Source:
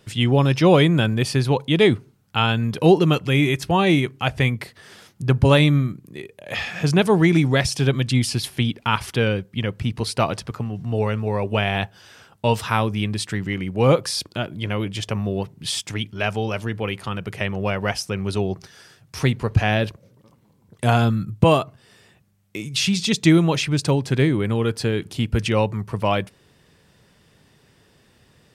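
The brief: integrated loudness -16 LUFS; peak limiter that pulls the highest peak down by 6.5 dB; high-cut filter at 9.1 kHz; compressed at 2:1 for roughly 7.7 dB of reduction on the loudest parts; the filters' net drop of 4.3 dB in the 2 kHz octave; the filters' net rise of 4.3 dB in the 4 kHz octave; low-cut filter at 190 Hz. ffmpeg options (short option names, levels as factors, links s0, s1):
-af "highpass=190,lowpass=9100,equalizer=f=2000:t=o:g=-9,equalizer=f=4000:t=o:g=9,acompressor=threshold=0.0562:ratio=2,volume=4.22,alimiter=limit=0.708:level=0:latency=1"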